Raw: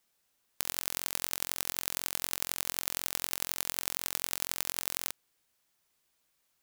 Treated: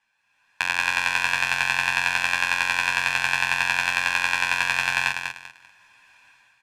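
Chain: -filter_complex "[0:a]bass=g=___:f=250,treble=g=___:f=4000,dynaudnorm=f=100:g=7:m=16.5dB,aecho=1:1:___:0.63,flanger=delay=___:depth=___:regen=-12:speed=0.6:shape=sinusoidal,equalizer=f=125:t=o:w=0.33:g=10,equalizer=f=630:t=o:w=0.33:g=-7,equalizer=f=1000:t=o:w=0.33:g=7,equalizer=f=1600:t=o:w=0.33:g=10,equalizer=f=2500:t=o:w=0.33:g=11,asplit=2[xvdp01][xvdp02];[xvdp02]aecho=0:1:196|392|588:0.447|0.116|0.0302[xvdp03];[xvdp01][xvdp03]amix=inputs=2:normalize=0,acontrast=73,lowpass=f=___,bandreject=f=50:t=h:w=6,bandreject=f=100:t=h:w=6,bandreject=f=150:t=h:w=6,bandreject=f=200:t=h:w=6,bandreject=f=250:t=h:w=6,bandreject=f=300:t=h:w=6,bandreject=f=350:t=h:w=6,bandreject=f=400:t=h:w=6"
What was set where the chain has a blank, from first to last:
-10, -9, 1.2, 9.6, 1, 7300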